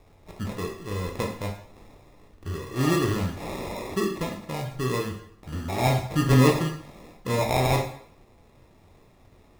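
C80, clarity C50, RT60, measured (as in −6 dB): 10.0 dB, 6.5 dB, 0.65 s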